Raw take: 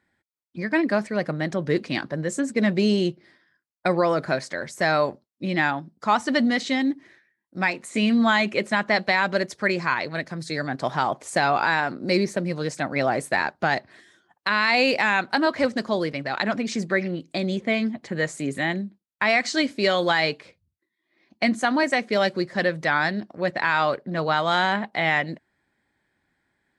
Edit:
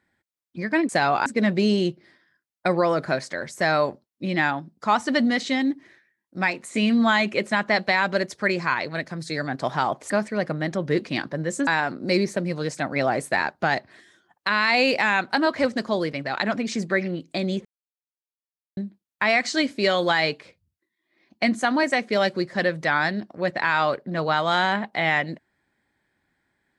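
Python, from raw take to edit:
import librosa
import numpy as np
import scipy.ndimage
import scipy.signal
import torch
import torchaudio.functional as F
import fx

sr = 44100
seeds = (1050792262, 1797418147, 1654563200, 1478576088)

y = fx.edit(x, sr, fx.swap(start_s=0.89, length_s=1.57, other_s=11.3, other_length_s=0.37),
    fx.silence(start_s=17.65, length_s=1.12), tone=tone)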